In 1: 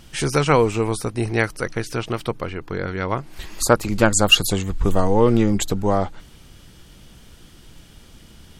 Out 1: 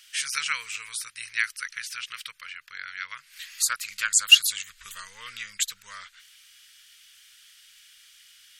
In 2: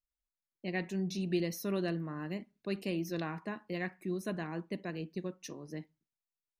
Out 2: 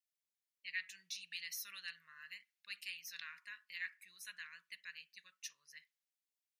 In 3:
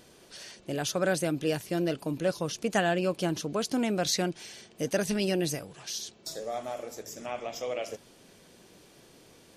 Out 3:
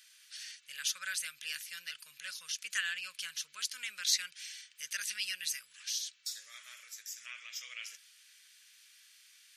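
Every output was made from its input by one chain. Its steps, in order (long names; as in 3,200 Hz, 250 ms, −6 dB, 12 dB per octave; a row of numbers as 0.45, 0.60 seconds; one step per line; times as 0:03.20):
inverse Chebyshev high-pass filter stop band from 830 Hz, stop band 40 dB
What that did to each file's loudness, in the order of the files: −4.0, −9.5, −6.5 LU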